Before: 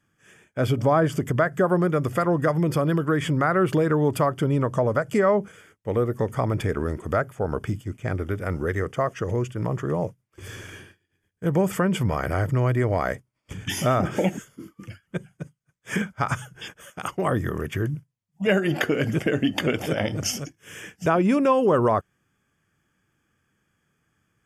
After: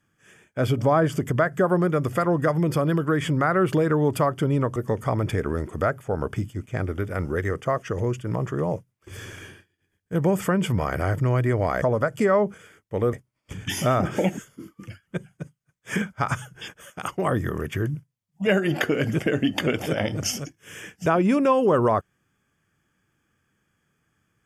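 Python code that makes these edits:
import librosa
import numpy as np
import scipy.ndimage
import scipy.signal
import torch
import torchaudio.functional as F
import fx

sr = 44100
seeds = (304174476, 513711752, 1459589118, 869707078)

y = fx.edit(x, sr, fx.move(start_s=4.76, length_s=1.31, to_s=13.13), tone=tone)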